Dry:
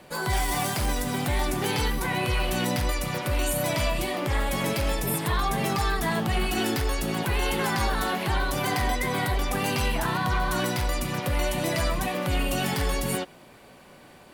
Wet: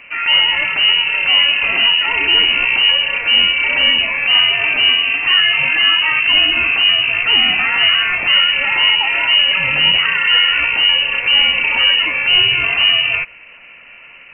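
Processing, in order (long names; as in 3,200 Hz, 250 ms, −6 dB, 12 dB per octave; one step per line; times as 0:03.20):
voice inversion scrambler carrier 2,900 Hz
high-shelf EQ 2,100 Hz +10 dB
level +5.5 dB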